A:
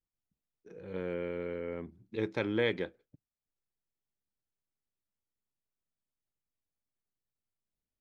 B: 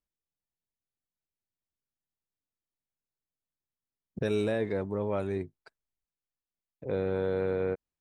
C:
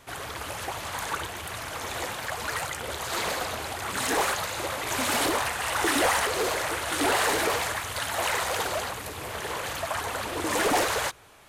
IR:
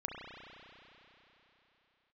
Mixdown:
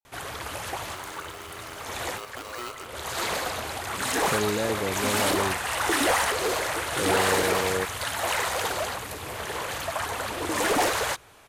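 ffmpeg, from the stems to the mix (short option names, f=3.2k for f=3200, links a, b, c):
-filter_complex "[0:a]aeval=exprs='val(0)*sgn(sin(2*PI*840*n/s))':c=same,volume=-11.5dB,asplit=3[a][b][c];[b]volume=-4dB[d];[1:a]adelay=100,volume=1dB[e];[2:a]adelay=50,volume=0.5dB[f];[c]apad=whole_len=508738[g];[f][g]sidechaincompress=threshold=-50dB:ratio=8:attack=25:release=324[h];[3:a]atrim=start_sample=2205[i];[d][i]afir=irnorm=-1:irlink=0[j];[a][e][h][j]amix=inputs=4:normalize=0"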